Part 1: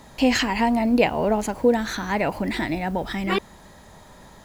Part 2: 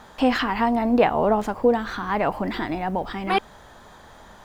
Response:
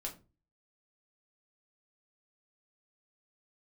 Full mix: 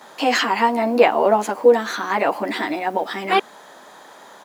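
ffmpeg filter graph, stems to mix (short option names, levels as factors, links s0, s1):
-filter_complex "[0:a]highpass=370,volume=1[s0];[1:a]highpass=f=270:w=0.5412,highpass=f=270:w=1.3066,adelay=11,volume=1.41[s1];[s0][s1]amix=inputs=2:normalize=0"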